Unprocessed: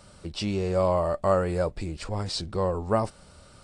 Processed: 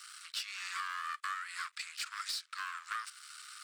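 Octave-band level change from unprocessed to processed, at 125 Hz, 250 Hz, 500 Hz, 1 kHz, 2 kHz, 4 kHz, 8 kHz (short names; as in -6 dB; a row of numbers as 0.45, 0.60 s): under -40 dB, under -40 dB, under -40 dB, -9.5 dB, +3.0 dB, -3.0 dB, -0.5 dB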